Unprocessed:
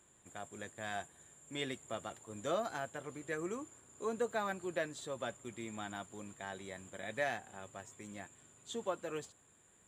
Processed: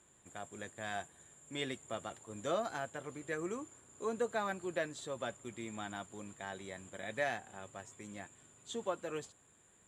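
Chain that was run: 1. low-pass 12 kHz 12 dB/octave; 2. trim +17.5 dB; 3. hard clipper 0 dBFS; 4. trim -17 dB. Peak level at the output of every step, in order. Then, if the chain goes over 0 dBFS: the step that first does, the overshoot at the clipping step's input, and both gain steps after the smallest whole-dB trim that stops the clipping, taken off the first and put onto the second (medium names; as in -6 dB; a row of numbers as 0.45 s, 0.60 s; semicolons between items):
-23.5 dBFS, -6.0 dBFS, -6.0 dBFS, -23.0 dBFS; nothing clips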